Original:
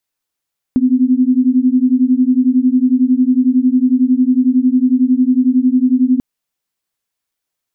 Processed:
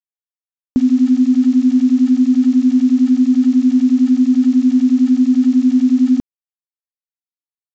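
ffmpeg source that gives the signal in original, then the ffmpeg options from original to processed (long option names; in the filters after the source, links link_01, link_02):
-f lavfi -i "aevalsrc='0.251*(sin(2*PI*249*t)+sin(2*PI*260*t))':duration=5.44:sample_rate=44100"
-af "acrusher=bits=5:mix=0:aa=0.000001,aresample=16000,aresample=44100"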